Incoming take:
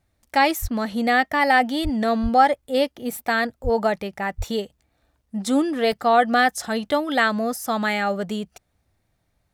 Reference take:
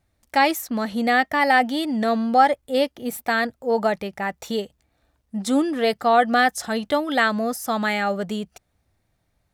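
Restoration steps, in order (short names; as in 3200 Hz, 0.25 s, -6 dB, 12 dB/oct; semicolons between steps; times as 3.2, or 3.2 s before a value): de-plosive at 0.61/1.83/2.22/3.63/4.37; interpolate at 4.37/5.92, 2.2 ms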